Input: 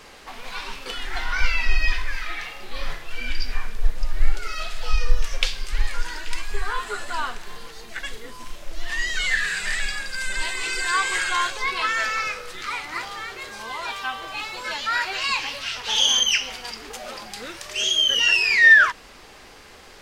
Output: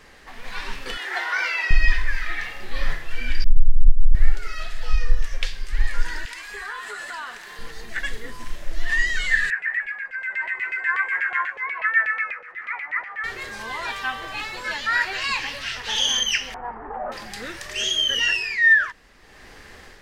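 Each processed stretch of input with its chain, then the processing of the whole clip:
0.97–1.71 steep high-pass 320 Hz 48 dB/oct + dynamic EQ 710 Hz, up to +4 dB, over -40 dBFS, Q 0.76
3.44–4.15 inverse Chebyshev band-stop 110–6300 Hz, stop band 70 dB + tone controls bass +14 dB, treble +5 dB + compressor 4:1, threshold -9 dBFS
6.25–7.59 HPF 710 Hz 6 dB/oct + compressor 2.5:1, threshold -33 dBFS
9.5–13.24 resonant high shelf 2800 Hz -9 dB, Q 3 + LFO band-pass saw down 8.2 Hz 600–3000 Hz
16.54–17.12 LPF 1400 Hz 24 dB/oct + bell 850 Hz +14.5 dB 1 oct
whole clip: bell 1800 Hz +9.5 dB 0.34 oct; AGC gain up to 6 dB; low shelf 280 Hz +7.5 dB; gain -7 dB

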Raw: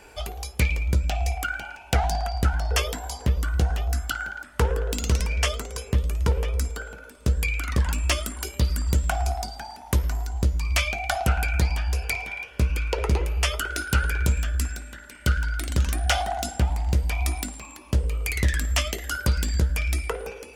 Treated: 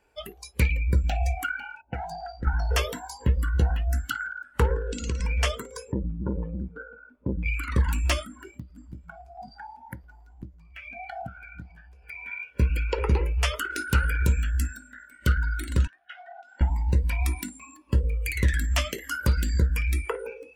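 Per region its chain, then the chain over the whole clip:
1.81–2.47 low-pass opened by the level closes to 430 Hz, open at -20 dBFS + compressor 2.5:1, threshold -30 dBFS
4.75–5.24 steep low-pass 8600 Hz 96 dB/oct + compressor 5:1, threshold -24 dBFS
5.92–7.46 LPF 1600 Hz + core saturation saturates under 380 Hz
8.25–12.26 high shelf 3500 Hz -10 dB + compressor 8:1, threshold -31 dBFS + echo 0.489 s -14 dB
15.87–16.61 compressor, threshold -32 dBFS + BPF 750–3200 Hz
whole clip: spectral noise reduction 18 dB; bell 7500 Hz -5 dB 2.3 oct

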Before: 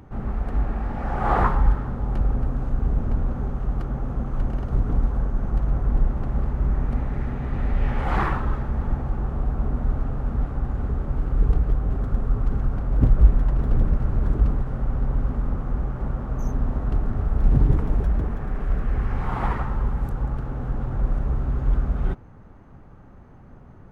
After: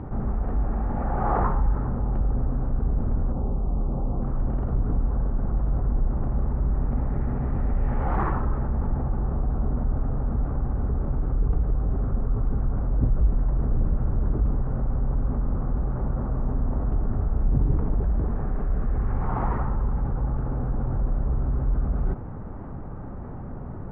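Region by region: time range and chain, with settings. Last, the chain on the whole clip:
3.32–4.22 LPF 1100 Hz 24 dB/oct + doubler 28 ms -5 dB + de-hum 49.65 Hz, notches 38
whole clip: LPF 1200 Hz 12 dB/oct; fast leveller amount 50%; gain -8 dB

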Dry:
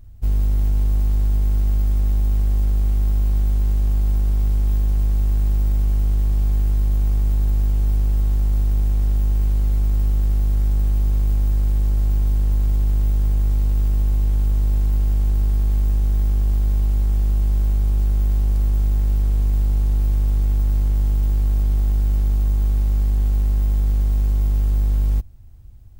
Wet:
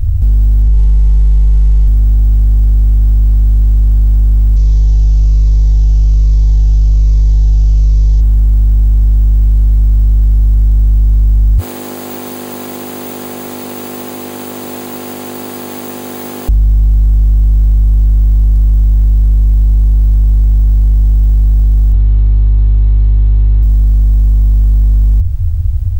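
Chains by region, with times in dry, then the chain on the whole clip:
0.62–1.88 LPF 8200 Hz + flutter echo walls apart 9.5 m, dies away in 0.81 s
4.56–8.21 EQ curve 100 Hz 0 dB, 160 Hz -21 dB, 530 Hz +7 dB, 1500 Hz 0 dB, 3000 Hz +6 dB, 6100 Hz +14 dB, 10000 Hz -17 dB + cascading phaser falling 1.2 Hz
11.58–16.49 steep high-pass 220 Hz + notch 5500 Hz, Q 6.6
21.93–23.63 minimum comb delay 4.6 ms + brick-wall FIR low-pass 4400 Hz
whole clip: resonant low shelf 120 Hz +10 dB, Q 3; maximiser +21 dB; gain -3 dB

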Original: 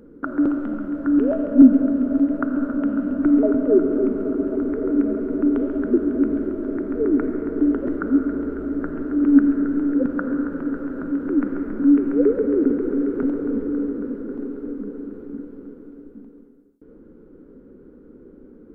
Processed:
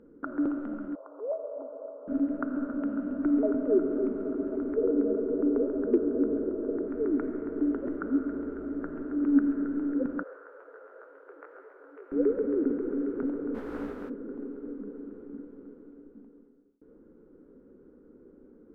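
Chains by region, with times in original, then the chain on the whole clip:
0.95–2.08 elliptic band-pass 460–1100 Hz, stop band 50 dB + mismatched tape noise reduction encoder only
4.76–6.88 LPF 1400 Hz + bell 470 Hz +12.5 dB 0.37 oct + hard clip -5.5 dBFS
10.23–12.12 elliptic high-pass 450 Hz, stop band 50 dB + detuned doubles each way 52 cents
13.54–14.08 spectral contrast lowered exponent 0.56 + detuned doubles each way 30 cents
whole clip: LPF 1300 Hz 6 dB/oct; low shelf 310 Hz -8 dB; gain -4.5 dB

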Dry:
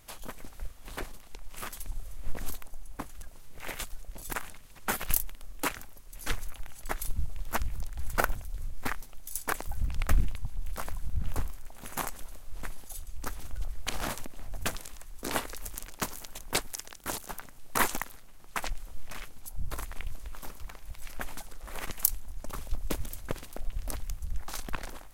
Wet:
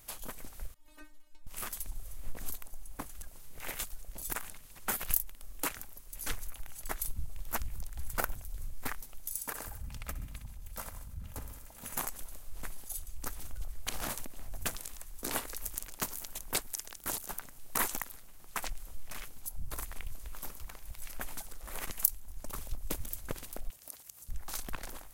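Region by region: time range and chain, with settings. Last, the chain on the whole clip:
0.74–1.47 high shelf 6700 Hz -8 dB + metallic resonator 300 Hz, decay 0.25 s, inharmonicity 0.002
9.32–11.94 feedback echo 63 ms, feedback 55%, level -11 dB + compressor 3:1, threshold -31 dBFS + notch comb 370 Hz
23.7–24.29 tone controls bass -10 dB, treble +7 dB + compressor, threshold -45 dBFS + HPF 130 Hz
whole clip: high shelf 7800 Hz +10.5 dB; compressor 1.5:1, threshold -33 dBFS; gain -2.5 dB

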